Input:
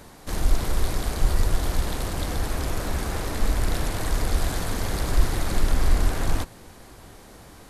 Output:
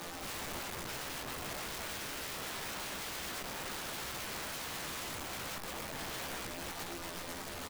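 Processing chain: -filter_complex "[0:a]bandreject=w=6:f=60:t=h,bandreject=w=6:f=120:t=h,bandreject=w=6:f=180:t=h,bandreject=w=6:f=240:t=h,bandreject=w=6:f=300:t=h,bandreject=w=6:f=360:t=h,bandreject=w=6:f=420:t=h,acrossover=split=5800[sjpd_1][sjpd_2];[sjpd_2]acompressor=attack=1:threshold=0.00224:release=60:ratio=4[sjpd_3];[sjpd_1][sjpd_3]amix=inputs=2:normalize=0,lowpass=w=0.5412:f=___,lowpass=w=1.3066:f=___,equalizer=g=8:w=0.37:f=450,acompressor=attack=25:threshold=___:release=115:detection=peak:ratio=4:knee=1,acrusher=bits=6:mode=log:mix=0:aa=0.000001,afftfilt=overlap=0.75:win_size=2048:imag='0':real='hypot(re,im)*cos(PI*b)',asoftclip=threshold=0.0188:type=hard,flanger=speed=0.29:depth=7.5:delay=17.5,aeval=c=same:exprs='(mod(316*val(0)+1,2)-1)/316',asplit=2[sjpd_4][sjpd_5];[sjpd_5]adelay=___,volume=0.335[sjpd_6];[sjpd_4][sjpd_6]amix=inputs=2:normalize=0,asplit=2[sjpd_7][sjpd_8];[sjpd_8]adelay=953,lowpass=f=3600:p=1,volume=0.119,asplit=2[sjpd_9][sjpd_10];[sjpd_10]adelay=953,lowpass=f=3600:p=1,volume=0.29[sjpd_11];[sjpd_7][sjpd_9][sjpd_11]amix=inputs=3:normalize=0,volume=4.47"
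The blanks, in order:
12000, 12000, 0.02, 15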